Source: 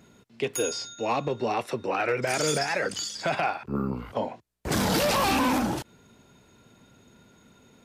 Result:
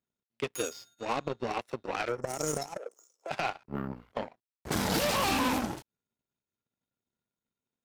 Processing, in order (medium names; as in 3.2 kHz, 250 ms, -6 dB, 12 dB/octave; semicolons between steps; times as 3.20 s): 2.08–3.29 s: time-frequency box 1.4–5.2 kHz -30 dB; power-law waveshaper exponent 2; 2.77–3.31 s: ladder high-pass 390 Hz, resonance 55%